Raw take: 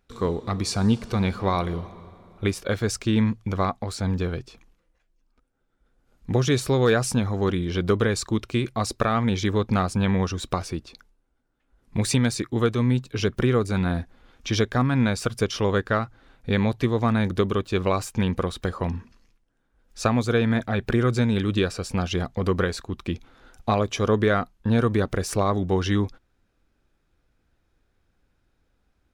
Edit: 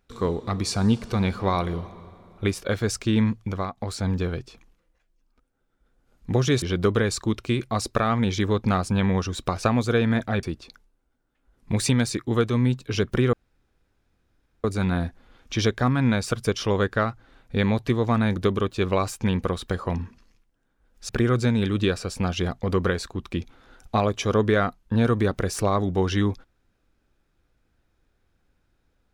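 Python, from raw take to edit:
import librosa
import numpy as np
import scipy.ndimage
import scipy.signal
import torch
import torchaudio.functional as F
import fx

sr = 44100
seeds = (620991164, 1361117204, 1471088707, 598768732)

y = fx.edit(x, sr, fx.fade_out_to(start_s=3.42, length_s=0.35, floor_db=-11.5),
    fx.cut(start_s=6.62, length_s=1.05),
    fx.insert_room_tone(at_s=13.58, length_s=1.31),
    fx.move(start_s=20.03, length_s=0.8, to_s=10.68), tone=tone)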